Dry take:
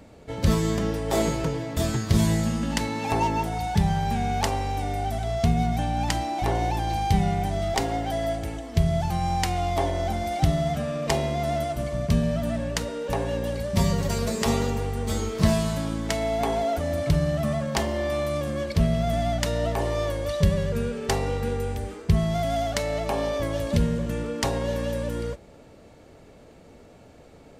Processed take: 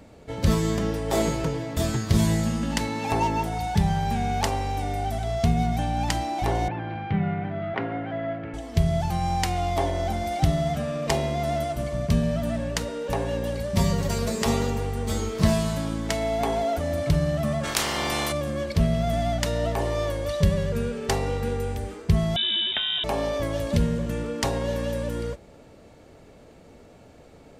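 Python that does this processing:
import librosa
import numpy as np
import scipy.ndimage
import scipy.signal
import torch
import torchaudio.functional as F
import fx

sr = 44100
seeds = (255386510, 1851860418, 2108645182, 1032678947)

y = fx.cabinet(x, sr, low_hz=110.0, low_slope=24, high_hz=2400.0, hz=(420.0, 800.0, 1400.0), db=(-3, -9, 5), at=(6.68, 8.54))
y = fx.spec_clip(y, sr, under_db=26, at=(17.63, 18.31), fade=0.02)
y = fx.freq_invert(y, sr, carrier_hz=3700, at=(22.36, 23.04))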